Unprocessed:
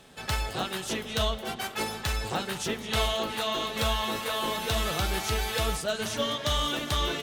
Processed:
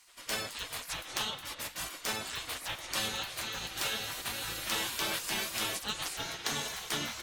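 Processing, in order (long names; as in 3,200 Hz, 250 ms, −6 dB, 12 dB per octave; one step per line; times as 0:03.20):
gate on every frequency bin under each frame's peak −15 dB weak
level +1 dB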